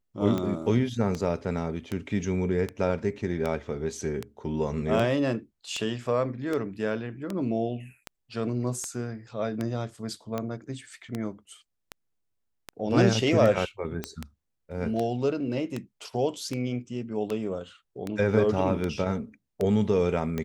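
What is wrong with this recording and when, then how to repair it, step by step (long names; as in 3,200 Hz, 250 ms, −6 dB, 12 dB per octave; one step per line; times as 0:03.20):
scratch tick 78 rpm −17 dBFS
0:14.04: click −15 dBFS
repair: click removal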